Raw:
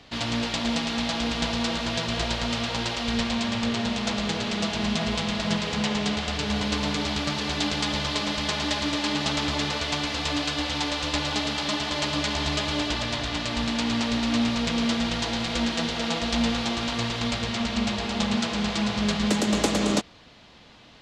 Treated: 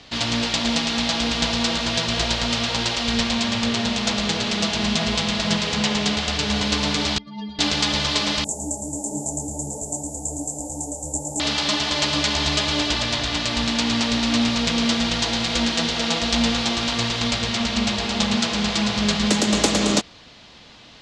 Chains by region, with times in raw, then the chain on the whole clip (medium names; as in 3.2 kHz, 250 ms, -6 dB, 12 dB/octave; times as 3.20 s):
7.18–7.59 s: spectral contrast enhancement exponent 2.4 + inharmonic resonator 210 Hz, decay 0.25 s, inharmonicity 0.008
8.44–11.40 s: Chebyshev band-stop 850–7300 Hz, order 5 + resonant high shelf 1.8 kHz +14 dB, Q 1.5 + detune thickener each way 48 cents
whole clip: low-pass 7 kHz 12 dB/octave; treble shelf 4.6 kHz +11 dB; trim +3 dB